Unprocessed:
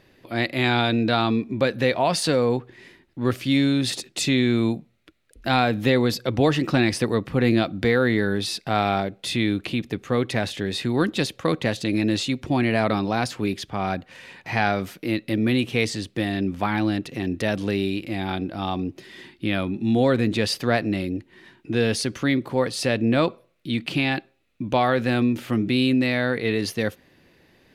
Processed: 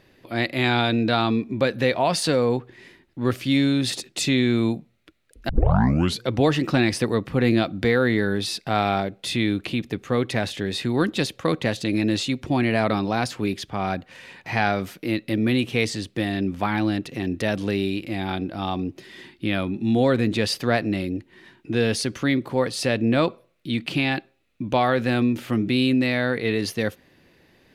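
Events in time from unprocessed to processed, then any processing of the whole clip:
5.49 tape start 0.75 s

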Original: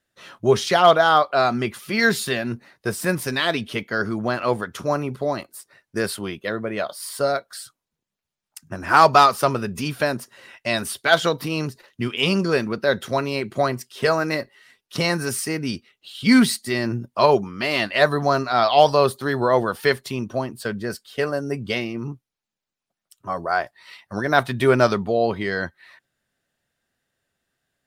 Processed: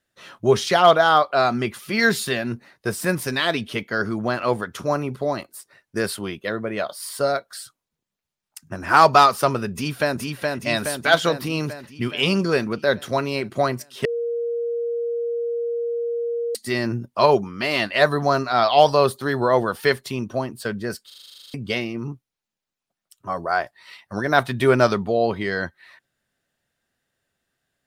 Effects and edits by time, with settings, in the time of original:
9.73–10.19 echo throw 0.42 s, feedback 65%, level -3 dB
14.05–16.55 bleep 470 Hz -22 dBFS
21.06 stutter in place 0.04 s, 12 plays

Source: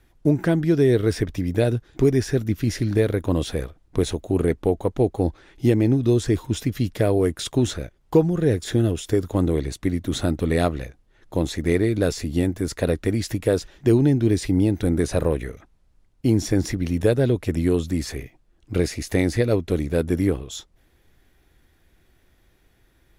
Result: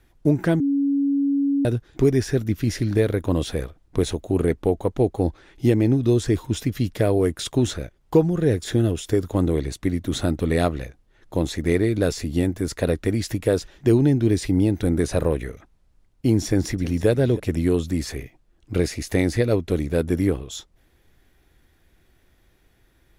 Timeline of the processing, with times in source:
0.6–1.65 bleep 280 Hz -17.5 dBFS
16.46–17.07 echo throw 0.32 s, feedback 30%, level -16 dB

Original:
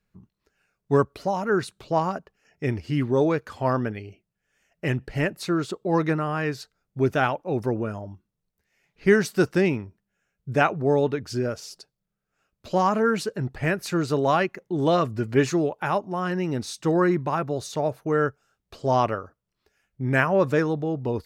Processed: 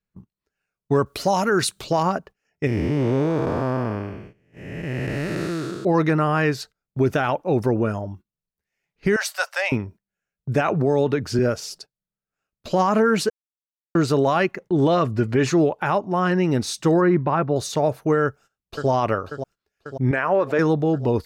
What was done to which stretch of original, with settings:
1.06–2.03 high shelf 2900 Hz +11 dB
2.67–5.85 time blur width 0.495 s
9.16–9.72 Chebyshev high-pass 570 Hz, order 6
10.68–11.39 three-band squash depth 40%
13.3–13.95 mute
14.51–16.51 high shelf 7800 Hz -8.5 dB
17.01–17.56 air absorption 280 m
18.23–18.89 echo throw 0.54 s, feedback 70%, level -11 dB
20.11–20.59 tone controls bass -14 dB, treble -12 dB
whole clip: gate -47 dBFS, range -17 dB; limiter -17 dBFS; gain +6.5 dB

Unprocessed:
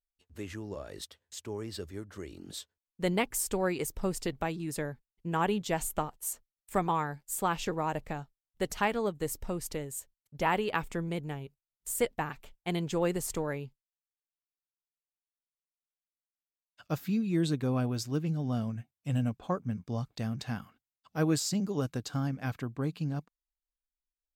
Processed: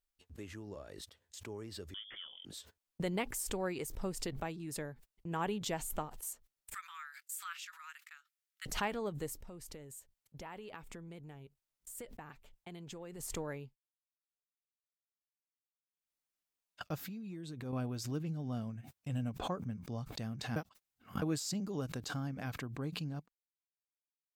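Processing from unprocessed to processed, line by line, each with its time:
1.94–2.45 inverted band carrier 3400 Hz
6.74–8.66 Chebyshev high-pass 1300 Hz, order 5
9.39–13.23 compressor 3:1, threshold -40 dBFS
17.06–17.73 compressor 10:1, threshold -34 dBFS
20.56–21.22 reverse
whole clip: gate -50 dBFS, range -29 dB; backwards sustainer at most 63 dB/s; gain -7.5 dB

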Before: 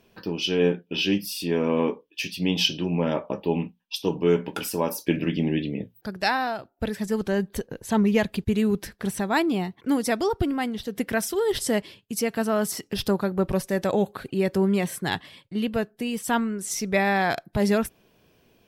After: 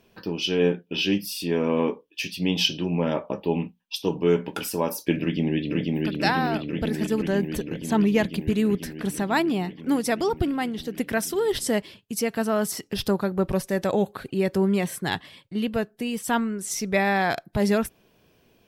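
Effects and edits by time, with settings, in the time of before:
5.21–6.08 echo throw 0.49 s, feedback 80%, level -1.5 dB

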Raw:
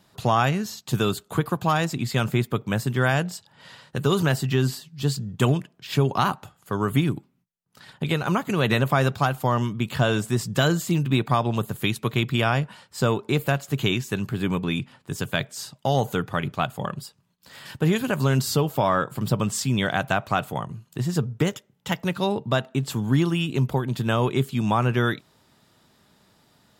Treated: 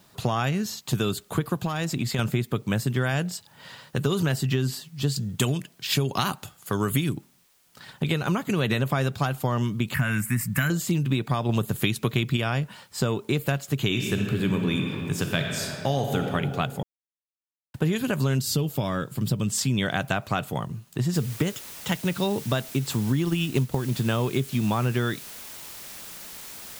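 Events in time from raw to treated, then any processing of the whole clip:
1.63–2.19 compressor, threshold -23 dBFS
5.16–7.15 high shelf 2800 Hz +9.5 dB
9.94–10.7 EQ curve 260 Hz 0 dB, 390 Hz -19 dB, 640 Hz -9 dB, 2200 Hz +11 dB, 3500 Hz -15 dB, 6500 Hz -5 dB, 11000 Hz +10 dB
11.49–12.37 gain +4.5 dB
13.86–16.19 reverb throw, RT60 2.2 s, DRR 3 dB
16.83–17.74 mute
18.4–19.58 bell 940 Hz -9 dB 2.2 oct
21.14 noise floor step -65 dB -43 dB
23.24–23.75 transient shaper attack +8 dB, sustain -4 dB
whole clip: dynamic EQ 930 Hz, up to -5 dB, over -37 dBFS, Q 0.88; compressor, threshold -22 dBFS; gain +2 dB

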